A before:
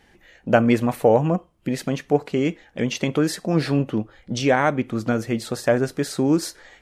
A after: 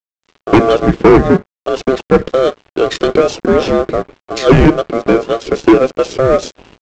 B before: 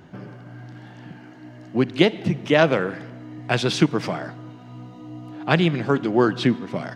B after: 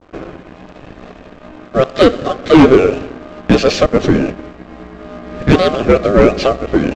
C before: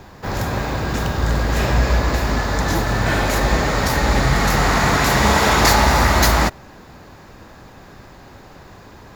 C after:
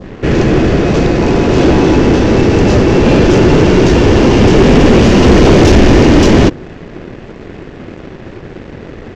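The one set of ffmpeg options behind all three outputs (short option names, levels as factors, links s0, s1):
-filter_complex "[0:a]asplit=2[s0][s1];[s1]highpass=f=720:p=1,volume=5.62,asoftclip=type=tanh:threshold=0.891[s2];[s0][s2]amix=inputs=2:normalize=0,lowpass=f=3900:p=1,volume=0.501,aeval=exprs='val(0)*sin(2*PI*920*n/s)':c=same,adynamicsmooth=sensitivity=6.5:basefreq=2700,lowshelf=f=600:t=q:w=1.5:g=13,aresample=16000,aeval=exprs='sgn(val(0))*max(abs(val(0))-0.0126,0)':c=same,aresample=44100,adynamicequalizer=threshold=0.0398:dfrequency=2200:dqfactor=0.99:tfrequency=2200:tqfactor=0.99:attack=5:release=100:ratio=0.375:range=2:mode=cutabove:tftype=bell,acontrast=61,volume=0.891"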